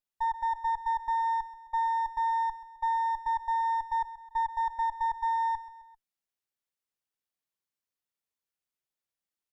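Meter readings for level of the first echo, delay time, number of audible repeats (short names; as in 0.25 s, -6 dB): -14.0 dB, 0.131 s, 3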